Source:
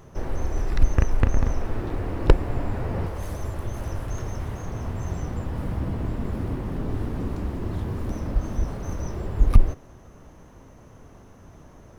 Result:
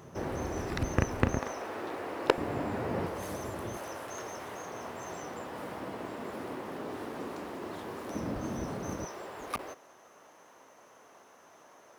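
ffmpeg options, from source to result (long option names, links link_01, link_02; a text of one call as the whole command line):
ffmpeg -i in.wav -af "asetnsamples=nb_out_samples=441:pad=0,asendcmd='1.39 highpass f 470;2.38 highpass f 200;3.77 highpass f 440;8.14 highpass f 180;9.05 highpass f 610',highpass=130" out.wav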